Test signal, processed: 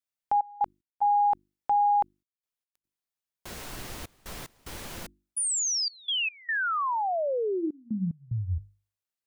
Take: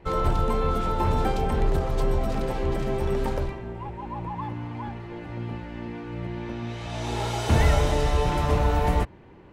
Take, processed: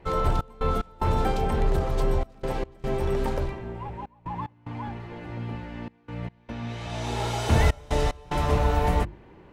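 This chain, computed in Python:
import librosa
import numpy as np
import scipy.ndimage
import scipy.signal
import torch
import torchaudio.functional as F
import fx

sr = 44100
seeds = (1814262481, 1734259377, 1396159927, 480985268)

y = fx.hum_notches(x, sr, base_hz=50, count=7)
y = fx.step_gate(y, sr, bpm=74, pattern='xx.x.xxxx', floor_db=-24.0, edge_ms=4.5)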